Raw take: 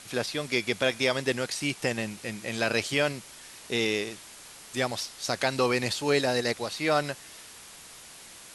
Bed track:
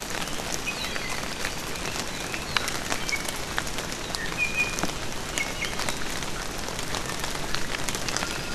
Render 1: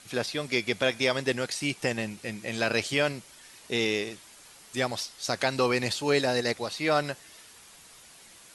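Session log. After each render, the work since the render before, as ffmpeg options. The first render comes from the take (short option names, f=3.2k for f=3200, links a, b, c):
-af "afftdn=nr=6:nf=-48"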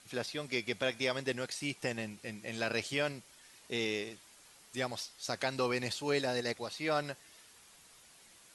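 -af "volume=-7.5dB"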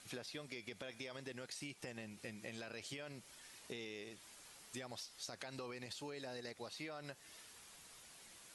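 -af "alimiter=level_in=2.5dB:limit=-24dB:level=0:latency=1:release=54,volume=-2.5dB,acompressor=threshold=-45dB:ratio=6"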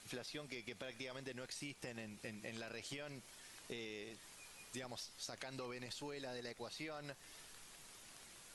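-filter_complex "[1:a]volume=-37.5dB[a];[0:a][a]amix=inputs=2:normalize=0"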